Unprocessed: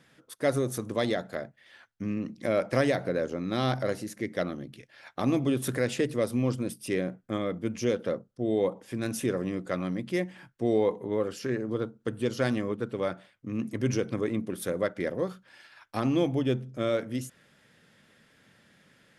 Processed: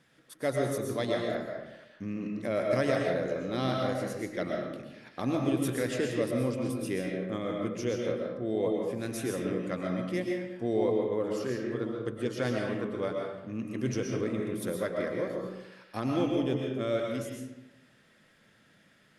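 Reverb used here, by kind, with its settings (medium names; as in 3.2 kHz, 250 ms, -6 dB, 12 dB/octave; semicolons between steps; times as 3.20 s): algorithmic reverb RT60 0.97 s, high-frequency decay 0.65×, pre-delay 85 ms, DRR 0 dB; trim -4.5 dB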